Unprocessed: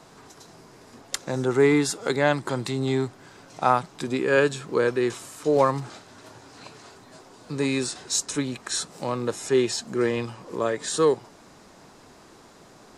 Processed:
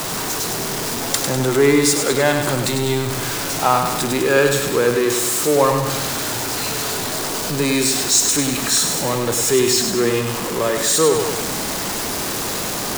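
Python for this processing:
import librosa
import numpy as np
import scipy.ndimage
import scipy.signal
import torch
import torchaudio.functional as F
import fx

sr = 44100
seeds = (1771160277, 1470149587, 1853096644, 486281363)

p1 = x + 0.5 * 10.0 ** (-24.0 / 20.0) * np.sign(x)
p2 = fx.high_shelf(p1, sr, hz=4700.0, db=7.5)
p3 = p2 + fx.echo_feedback(p2, sr, ms=100, feedback_pct=53, wet_db=-6, dry=0)
y = p3 * 10.0 ** (2.0 / 20.0)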